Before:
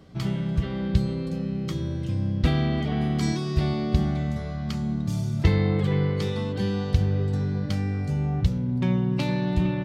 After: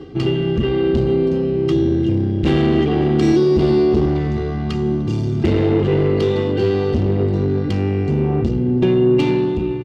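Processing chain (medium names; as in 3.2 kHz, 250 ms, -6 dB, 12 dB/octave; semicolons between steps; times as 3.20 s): fade out at the end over 0.56 s; low-pass 4.9 kHz 12 dB/octave; hum notches 60/120 Hz; comb 2.5 ms, depth 96%; reverse; upward compressor, threshold -28 dBFS; reverse; valve stage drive 24 dB, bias 0.4; small resonant body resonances 220/340/2800 Hz, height 14 dB, ringing for 35 ms; on a send: reverberation RT60 3.3 s, pre-delay 38 ms, DRR 16 dB; on the sum: trim +5 dB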